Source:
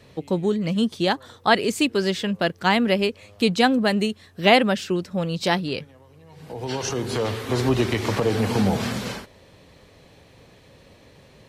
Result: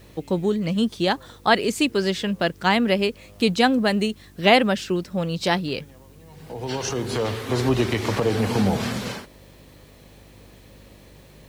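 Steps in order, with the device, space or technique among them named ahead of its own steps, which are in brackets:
video cassette with head-switching buzz (hum with harmonics 50 Hz, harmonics 7, −51 dBFS −4 dB per octave; white noise bed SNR 37 dB)

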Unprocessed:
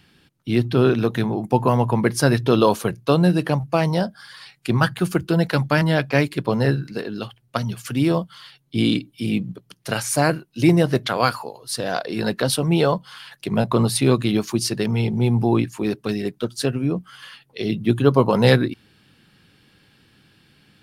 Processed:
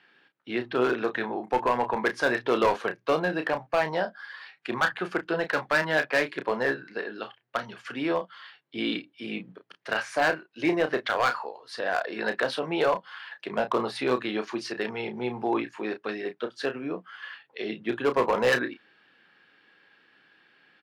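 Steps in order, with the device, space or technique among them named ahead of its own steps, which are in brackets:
megaphone (band-pass filter 470–2,700 Hz; parametric band 1,700 Hz +6 dB 0.37 octaves; hard clipping −15 dBFS, distortion −13 dB; double-tracking delay 32 ms −9 dB)
level −2 dB

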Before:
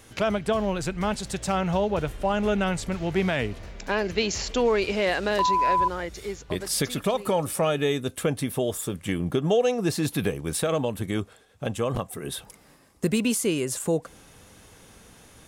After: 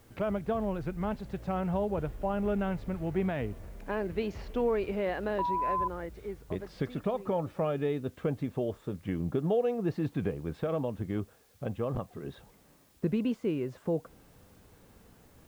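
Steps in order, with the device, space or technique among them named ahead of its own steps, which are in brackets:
cassette deck with a dirty head (head-to-tape spacing loss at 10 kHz 45 dB; tape wow and flutter; white noise bed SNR 34 dB)
level −4 dB

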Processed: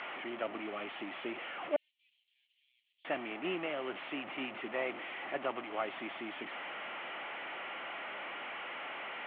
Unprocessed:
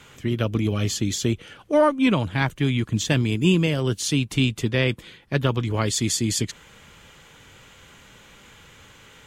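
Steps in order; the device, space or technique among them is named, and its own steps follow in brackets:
digital answering machine (band-pass filter 340–3,100 Hz; linear delta modulator 16 kbit/s, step −27.5 dBFS; loudspeaker in its box 420–3,900 Hz, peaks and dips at 460 Hz −10 dB, 700 Hz +3 dB, 1,000 Hz −5 dB, 1,600 Hz −7 dB, 2,500 Hz −3 dB, 3,700 Hz −7 dB)
0:01.76–0:03.05: inverse Chebyshev high-pass filter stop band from 1,300 Hz, stop band 70 dB
level −4.5 dB

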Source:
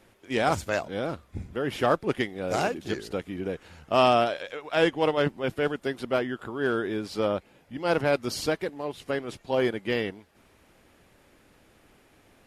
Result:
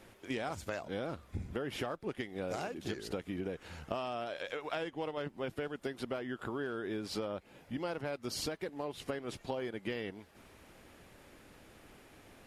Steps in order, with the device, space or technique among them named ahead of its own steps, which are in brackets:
serial compression, leveller first (downward compressor 2 to 1, threshold −26 dBFS, peak gain reduction 6 dB; downward compressor 10 to 1, threshold −36 dBFS, peak gain reduction 15 dB)
level +1.5 dB

